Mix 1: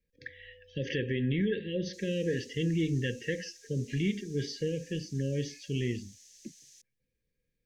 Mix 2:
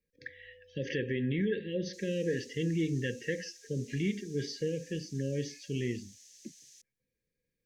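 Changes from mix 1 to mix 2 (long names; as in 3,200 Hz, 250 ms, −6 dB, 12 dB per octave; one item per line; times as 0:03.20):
speech: add parametric band 3,100 Hz −4.5 dB 0.58 octaves
master: add low-shelf EQ 96 Hz −9.5 dB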